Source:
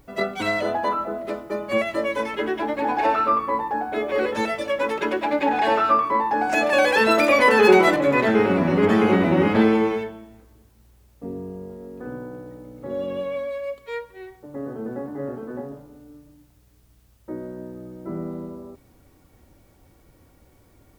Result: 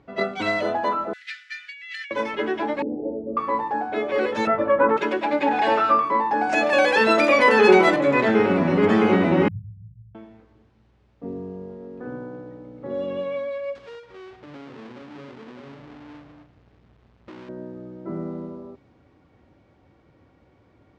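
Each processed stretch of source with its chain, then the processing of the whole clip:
1.13–2.11 s: steep high-pass 1.6 kHz 72 dB/octave + treble shelf 2.5 kHz +8.5 dB + compressor with a negative ratio -36 dBFS
2.82–3.37 s: steep low-pass 530 Hz 48 dB/octave + doubling 44 ms -3.5 dB
4.47–4.97 s: resonant low-pass 1.3 kHz, resonance Q 2.9 + bass shelf 490 Hz +9 dB
9.48–10.15 s: brick-wall FIR band-stop 170–12000 Hz + bass shelf 72 Hz +9.5 dB
13.75–17.49 s: square wave that keeps the level + compression, threshold -40 dBFS
whole clip: high-pass 90 Hz; level-controlled noise filter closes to 3 kHz, open at -17.5 dBFS; low-pass 6.8 kHz 12 dB/octave

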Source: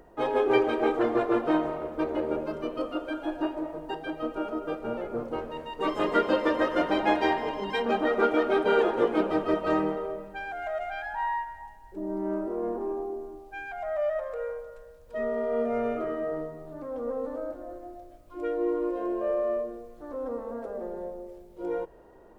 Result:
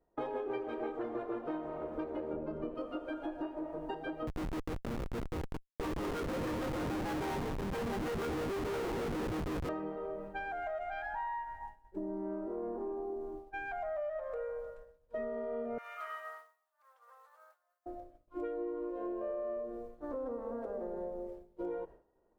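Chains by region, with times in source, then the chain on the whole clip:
2.33–2.75 s: low-pass 2.4 kHz 6 dB/octave + bass shelf 330 Hz +8.5 dB
4.27–9.69 s: band-stop 630 Hz, Q 5.3 + Schmitt trigger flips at -30.5 dBFS
15.78–17.86 s: high-pass 1 kHz 24 dB/octave + tilt EQ +4 dB/octave
whole clip: expander -39 dBFS; treble shelf 2.6 kHz -9.5 dB; compression 6:1, threshold -39 dBFS; trim +2.5 dB

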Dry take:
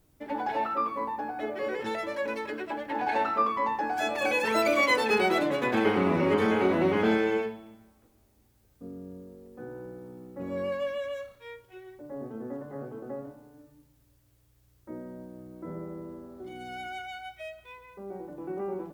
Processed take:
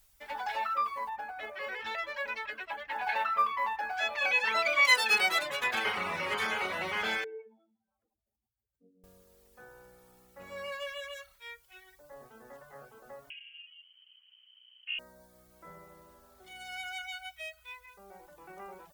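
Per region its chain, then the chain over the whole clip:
1.09–4.85 s: low-pass 3.4 kHz + short-mantissa float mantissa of 6-bit
7.24–9.04 s: spectral contrast enhancement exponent 2.3 + high-pass 210 Hz
13.30–14.99 s: distance through air 340 m + frequency inversion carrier 3.1 kHz
whole clip: peaking EQ 110 Hz -11.5 dB 1.2 oct; reverb removal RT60 0.55 s; amplifier tone stack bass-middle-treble 10-0-10; trim +7.5 dB

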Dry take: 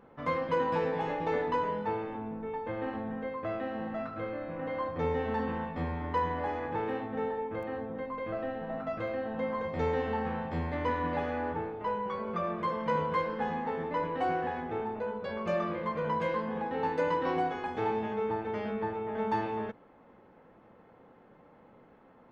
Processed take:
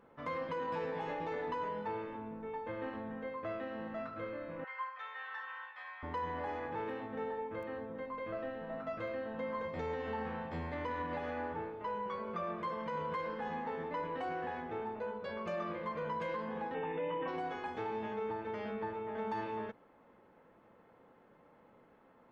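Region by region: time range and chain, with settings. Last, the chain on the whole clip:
4.64–6.03 s: high-pass 1.1 kHz 24 dB/octave + distance through air 150 m + comb 3.9 ms, depth 99%
16.74–17.28 s: brick-wall FIR low-pass 3.7 kHz + comb 6.4 ms, depth 100%
whole clip: peak limiter -25 dBFS; bass shelf 360 Hz -4.5 dB; band-stop 770 Hz, Q 18; trim -3.5 dB

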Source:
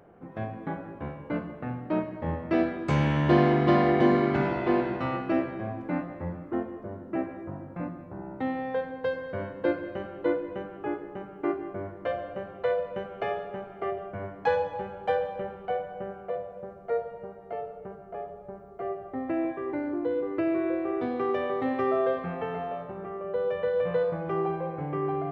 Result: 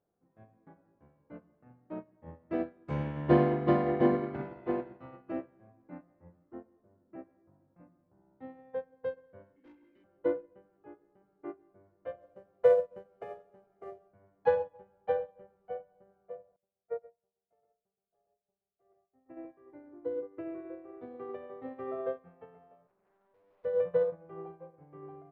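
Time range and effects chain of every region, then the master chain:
9.56–10.04 s: vowel filter i + overdrive pedal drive 30 dB, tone 4 kHz, clips at -26.5 dBFS
12.21–14.08 s: CVSD coder 64 kbps + peaking EQ 460 Hz +3 dB 1.7 oct
16.56–19.37 s: delay 126 ms -3.5 dB + upward expansion 2.5:1, over -40 dBFS
22.87–23.65 s: bass shelf 420 Hz -9.5 dB + valve stage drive 38 dB, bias 0.7 + loudspeaker Doppler distortion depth 0.79 ms
whole clip: low-pass 1.4 kHz 6 dB/octave; dynamic bell 500 Hz, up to +5 dB, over -41 dBFS, Q 5.4; upward expansion 2.5:1, over -35 dBFS

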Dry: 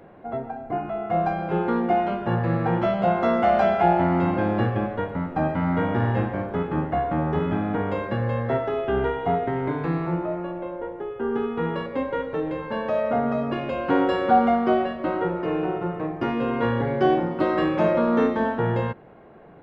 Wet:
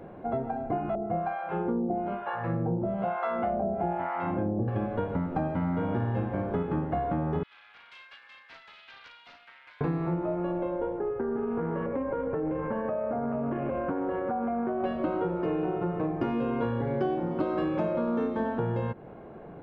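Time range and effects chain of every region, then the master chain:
0.95–4.68 s: low-pass 2.4 kHz + harmonic tremolo 1.1 Hz, depth 100%, crossover 710 Hz
7.43–9.81 s: ladder high-pass 1.9 kHz, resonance 20% + loudspeaker Doppler distortion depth 0.21 ms
10.98–14.84 s: low-pass 2 kHz 24 dB/octave + compression, threshold -28 dBFS + loudspeaker Doppler distortion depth 0.13 ms
whole clip: tilt shelf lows +3.5 dB; band-stop 1.9 kHz, Q 21; compression, threshold -27 dBFS; trim +1 dB

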